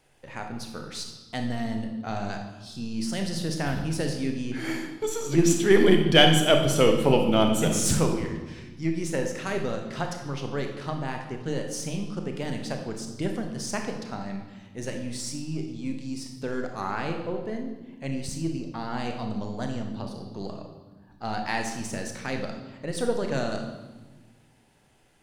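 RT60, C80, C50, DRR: 1.3 s, 8.5 dB, 5.5 dB, 3.5 dB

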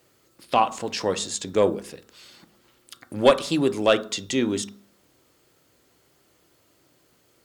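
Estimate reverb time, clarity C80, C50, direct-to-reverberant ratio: 0.50 s, 21.5 dB, 17.0 dB, 9.5 dB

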